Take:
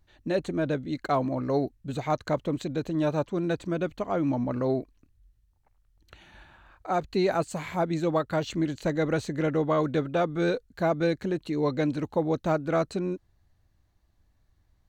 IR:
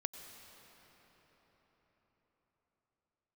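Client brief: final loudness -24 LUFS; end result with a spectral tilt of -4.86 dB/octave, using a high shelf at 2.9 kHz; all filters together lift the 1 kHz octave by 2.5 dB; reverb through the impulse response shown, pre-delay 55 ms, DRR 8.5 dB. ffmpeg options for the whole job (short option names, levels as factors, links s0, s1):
-filter_complex "[0:a]equalizer=f=1000:t=o:g=4.5,highshelf=f=2900:g=-7.5,asplit=2[s0][s1];[1:a]atrim=start_sample=2205,adelay=55[s2];[s1][s2]afir=irnorm=-1:irlink=0,volume=0.422[s3];[s0][s3]amix=inputs=2:normalize=0,volume=1.41"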